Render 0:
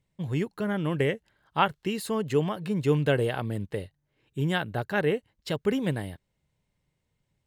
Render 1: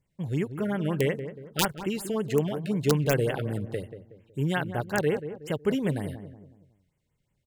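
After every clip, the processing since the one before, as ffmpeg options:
-filter_complex "[0:a]aeval=exprs='(mod(4.73*val(0)+1,2)-1)/4.73':c=same,asplit=2[s0][s1];[s1]adelay=185,lowpass=f=1000:p=1,volume=0.316,asplit=2[s2][s3];[s3]adelay=185,lowpass=f=1000:p=1,volume=0.42,asplit=2[s4][s5];[s5]adelay=185,lowpass=f=1000:p=1,volume=0.42,asplit=2[s6][s7];[s7]adelay=185,lowpass=f=1000:p=1,volume=0.42[s8];[s0][s2][s4][s6][s8]amix=inputs=5:normalize=0,afftfilt=real='re*(1-between(b*sr/1024,900*pow(5000/900,0.5+0.5*sin(2*PI*5.5*pts/sr))/1.41,900*pow(5000/900,0.5+0.5*sin(2*PI*5.5*pts/sr))*1.41))':imag='im*(1-between(b*sr/1024,900*pow(5000/900,0.5+0.5*sin(2*PI*5.5*pts/sr))/1.41,900*pow(5000/900,0.5+0.5*sin(2*PI*5.5*pts/sr))*1.41))':win_size=1024:overlap=0.75"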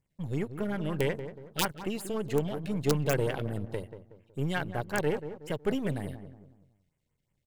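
-af "aeval=exprs='if(lt(val(0),0),0.447*val(0),val(0))':c=same,volume=0.891"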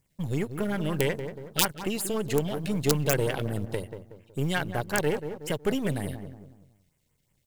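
-filter_complex "[0:a]highshelf=f=3600:g=8,asplit=2[s0][s1];[s1]acompressor=threshold=0.0178:ratio=6,volume=0.944[s2];[s0][s2]amix=inputs=2:normalize=0,acrusher=bits=9:mode=log:mix=0:aa=0.000001"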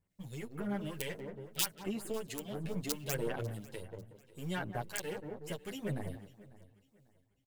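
-filter_complex "[0:a]acrossover=split=2100[s0][s1];[s0]aeval=exprs='val(0)*(1-0.7/2+0.7/2*cos(2*PI*1.5*n/s))':c=same[s2];[s1]aeval=exprs='val(0)*(1-0.7/2-0.7/2*cos(2*PI*1.5*n/s))':c=same[s3];[s2][s3]amix=inputs=2:normalize=0,aecho=1:1:546|1092|1638:0.0841|0.0294|0.0103,asplit=2[s4][s5];[s5]adelay=8.7,afreqshift=1.8[s6];[s4][s6]amix=inputs=2:normalize=1,volume=0.631"

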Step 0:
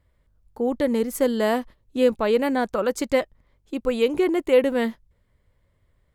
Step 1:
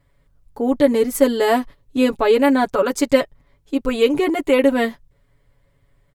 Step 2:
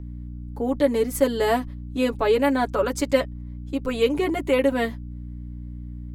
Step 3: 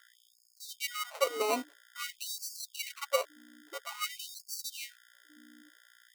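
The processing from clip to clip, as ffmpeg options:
-af "aecho=1:1:7.1:0.91,volume=1.5"
-filter_complex "[0:a]aeval=exprs='val(0)+0.0355*(sin(2*PI*60*n/s)+sin(2*PI*2*60*n/s)/2+sin(2*PI*3*60*n/s)/3+sin(2*PI*4*60*n/s)/4+sin(2*PI*5*60*n/s)/5)':c=same,acrossover=split=260|1200[s0][s1][s2];[s0]alimiter=limit=0.075:level=0:latency=1[s3];[s3][s1][s2]amix=inputs=3:normalize=0,volume=0.596"
-af "acrusher=samples=26:mix=1:aa=0.000001,afftfilt=real='re*gte(b*sr/1024,230*pow(4300/230,0.5+0.5*sin(2*PI*0.5*pts/sr)))':imag='im*gte(b*sr/1024,230*pow(4300/230,0.5+0.5*sin(2*PI*0.5*pts/sr)))':win_size=1024:overlap=0.75,volume=0.376"

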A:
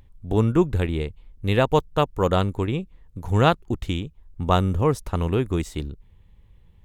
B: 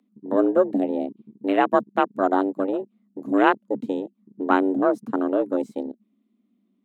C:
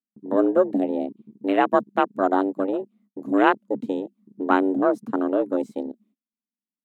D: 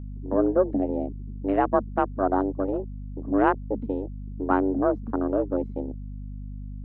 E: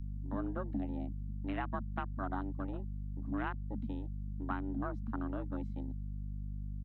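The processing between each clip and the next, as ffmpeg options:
-af "afreqshift=190,afwtdn=0.0562"
-af "agate=range=0.0224:threshold=0.00141:ratio=16:detection=peak"
-af "lowpass=1400,aeval=exprs='val(0)+0.0251*(sin(2*PI*50*n/s)+sin(2*PI*2*50*n/s)/2+sin(2*PI*3*50*n/s)/3+sin(2*PI*4*50*n/s)/4+sin(2*PI*5*50*n/s)/5)':c=same,volume=0.75"
-filter_complex "[0:a]firequalizer=gain_entry='entry(190,0);entry(430,-21);entry(820,-7);entry(1400,-1);entry(3800,9)':delay=0.05:min_phase=1,acrossover=split=210[s0][s1];[s1]acompressor=threshold=0.0282:ratio=6[s2];[s0][s2]amix=inputs=2:normalize=0,volume=0.631"

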